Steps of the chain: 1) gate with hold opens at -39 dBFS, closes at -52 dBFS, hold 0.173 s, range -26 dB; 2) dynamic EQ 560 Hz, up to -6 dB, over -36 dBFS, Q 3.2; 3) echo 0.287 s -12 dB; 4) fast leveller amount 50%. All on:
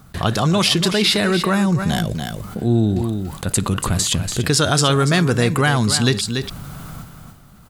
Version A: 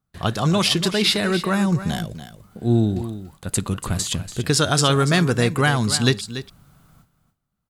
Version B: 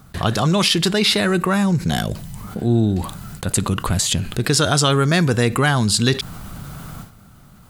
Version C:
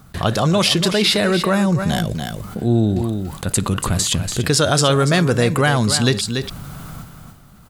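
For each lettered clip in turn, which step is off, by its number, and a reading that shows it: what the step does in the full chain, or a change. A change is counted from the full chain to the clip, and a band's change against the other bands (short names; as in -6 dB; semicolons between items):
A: 4, crest factor change +2.0 dB; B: 3, momentary loudness spread change +4 LU; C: 2, 500 Hz band +2.0 dB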